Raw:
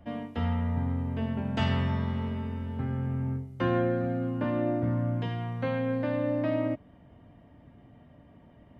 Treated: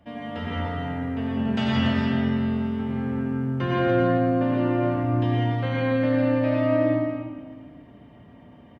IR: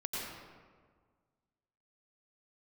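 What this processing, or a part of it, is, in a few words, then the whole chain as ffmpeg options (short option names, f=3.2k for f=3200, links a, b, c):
stadium PA: -filter_complex "[0:a]highpass=f=120:p=1,equalizer=f=3.5k:t=o:w=1.9:g=4,aecho=1:1:166.2|288.6:0.251|0.447[a];[1:a]atrim=start_sample=2205[b];[a][b]afir=irnorm=-1:irlink=0,volume=2dB"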